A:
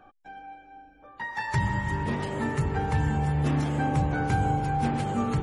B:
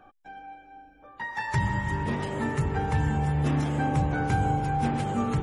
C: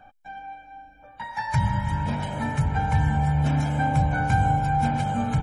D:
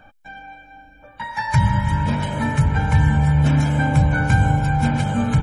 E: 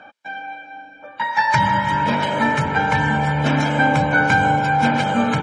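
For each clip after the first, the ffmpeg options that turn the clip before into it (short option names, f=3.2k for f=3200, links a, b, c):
-af "bandreject=f=4.4k:w=20"
-af "aecho=1:1:1.3:0.8"
-af "equalizer=f=750:w=7.5:g=-13,volume=6.5dB"
-af "highpass=300,lowpass=5k,volume=7.5dB"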